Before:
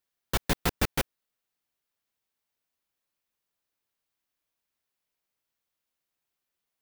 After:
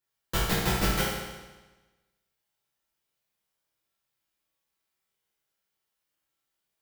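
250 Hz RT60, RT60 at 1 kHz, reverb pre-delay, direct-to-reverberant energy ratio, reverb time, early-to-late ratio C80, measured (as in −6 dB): 1.2 s, 1.2 s, 6 ms, −6.5 dB, 1.2 s, 3.0 dB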